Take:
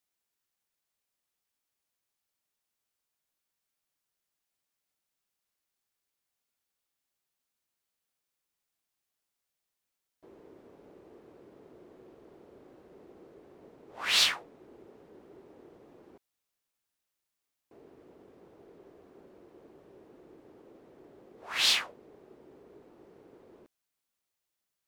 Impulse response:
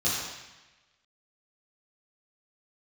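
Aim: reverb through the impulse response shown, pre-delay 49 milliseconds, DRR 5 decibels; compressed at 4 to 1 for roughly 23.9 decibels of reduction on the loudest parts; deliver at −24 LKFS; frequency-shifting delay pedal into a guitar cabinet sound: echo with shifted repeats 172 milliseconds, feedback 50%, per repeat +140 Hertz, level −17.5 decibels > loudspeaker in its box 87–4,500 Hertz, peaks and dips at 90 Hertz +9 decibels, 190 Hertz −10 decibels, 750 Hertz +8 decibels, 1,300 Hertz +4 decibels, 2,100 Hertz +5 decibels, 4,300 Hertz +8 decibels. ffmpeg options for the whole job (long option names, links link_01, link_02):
-filter_complex "[0:a]acompressor=threshold=-51dB:ratio=4,asplit=2[link_01][link_02];[1:a]atrim=start_sample=2205,adelay=49[link_03];[link_02][link_03]afir=irnorm=-1:irlink=0,volume=-15.5dB[link_04];[link_01][link_04]amix=inputs=2:normalize=0,asplit=5[link_05][link_06][link_07][link_08][link_09];[link_06]adelay=172,afreqshift=140,volume=-17.5dB[link_10];[link_07]adelay=344,afreqshift=280,volume=-23.5dB[link_11];[link_08]adelay=516,afreqshift=420,volume=-29.5dB[link_12];[link_09]adelay=688,afreqshift=560,volume=-35.6dB[link_13];[link_05][link_10][link_11][link_12][link_13]amix=inputs=5:normalize=0,highpass=87,equalizer=frequency=90:width_type=q:width=4:gain=9,equalizer=frequency=190:width_type=q:width=4:gain=-10,equalizer=frequency=750:width_type=q:width=4:gain=8,equalizer=frequency=1300:width_type=q:width=4:gain=4,equalizer=frequency=2100:width_type=q:width=4:gain=5,equalizer=frequency=4300:width_type=q:width=4:gain=8,lowpass=frequency=4500:width=0.5412,lowpass=frequency=4500:width=1.3066,volume=27.5dB"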